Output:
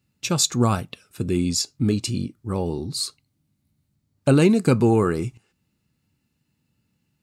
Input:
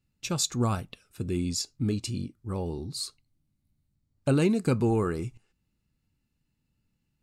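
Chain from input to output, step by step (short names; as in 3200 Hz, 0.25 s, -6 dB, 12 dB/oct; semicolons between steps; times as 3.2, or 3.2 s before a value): HPF 92 Hz; gain +7.5 dB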